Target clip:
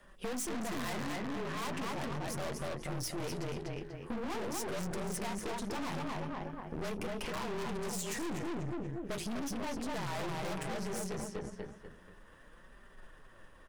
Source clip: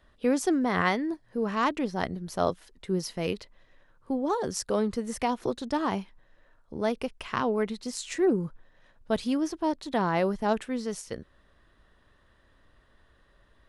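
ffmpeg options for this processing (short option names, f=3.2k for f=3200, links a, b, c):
-filter_complex "[0:a]equalizer=f=4k:t=o:w=0.49:g=-10,asplit=2[a][b];[b]adelay=242,lowpass=f=4.5k:p=1,volume=-4dB,asplit=2[c][d];[d]adelay=242,lowpass=f=4.5k:p=1,volume=0.38,asplit=2[e][f];[f]adelay=242,lowpass=f=4.5k:p=1,volume=0.38,asplit=2[g][h];[h]adelay=242,lowpass=f=4.5k:p=1,volume=0.38,asplit=2[i][j];[j]adelay=242,lowpass=f=4.5k:p=1,volume=0.38[k];[a][c][e][g][i][k]amix=inputs=6:normalize=0,asplit=2[l][m];[m]aeval=exprs='0.0355*(abs(mod(val(0)/0.0355+3,4)-2)-1)':c=same,volume=-4dB[n];[l][n]amix=inputs=2:normalize=0,bandreject=f=50:t=h:w=6,bandreject=f=100:t=h:w=6,bandreject=f=150:t=h:w=6,bandreject=f=200:t=h:w=6,bandreject=f=250:t=h:w=6,bandreject=f=300:t=h:w=6,bandreject=f=350:t=h:w=6,bandreject=f=400:t=h:w=6,bandreject=f=450:t=h:w=6,afreqshift=-36,flanger=delay=5:depth=9.7:regen=-31:speed=0.39:shape=sinusoidal,aeval=exprs='(tanh(89.1*val(0)+0.7)-tanh(0.7))/89.1':c=same,highshelf=f=5.7k:g=6,acompressor=threshold=-44dB:ratio=3,volume=8dB"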